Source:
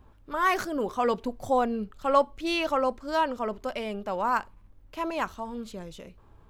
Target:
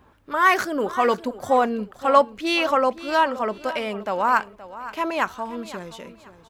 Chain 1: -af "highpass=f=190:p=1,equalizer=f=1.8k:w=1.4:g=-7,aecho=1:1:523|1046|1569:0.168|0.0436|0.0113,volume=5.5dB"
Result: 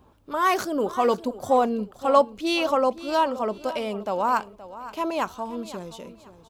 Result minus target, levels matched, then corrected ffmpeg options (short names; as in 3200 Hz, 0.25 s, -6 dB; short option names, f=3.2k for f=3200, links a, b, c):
2000 Hz band -6.0 dB
-af "highpass=f=190:p=1,equalizer=f=1.8k:w=1.4:g=4,aecho=1:1:523|1046|1569:0.168|0.0436|0.0113,volume=5.5dB"